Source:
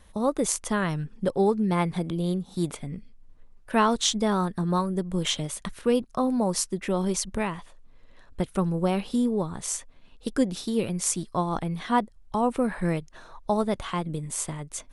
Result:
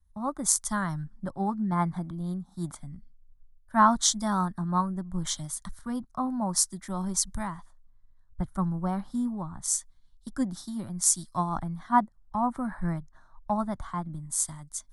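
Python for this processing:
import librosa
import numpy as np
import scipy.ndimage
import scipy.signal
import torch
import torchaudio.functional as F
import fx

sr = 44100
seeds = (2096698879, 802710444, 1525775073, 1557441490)

y = fx.fixed_phaser(x, sr, hz=1100.0, stages=4)
y = fx.band_widen(y, sr, depth_pct=70)
y = y * 10.0 ** (-1.0 / 20.0)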